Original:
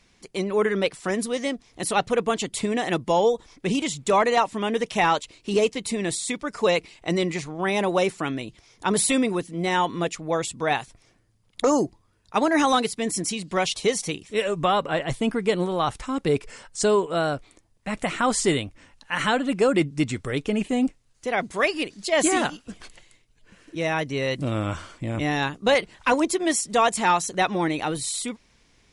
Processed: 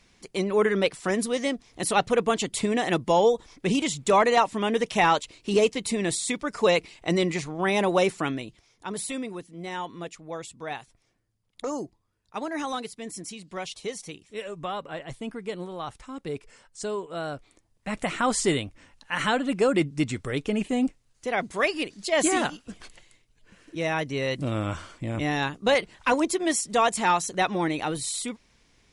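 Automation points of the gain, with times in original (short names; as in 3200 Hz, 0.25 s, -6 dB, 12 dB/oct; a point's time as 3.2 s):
8.26 s 0 dB
8.86 s -11 dB
16.98 s -11 dB
17.89 s -2 dB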